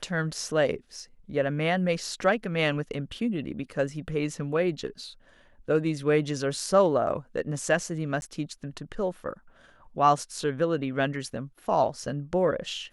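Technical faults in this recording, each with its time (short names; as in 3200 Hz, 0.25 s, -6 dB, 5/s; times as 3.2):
8.21–8.22 gap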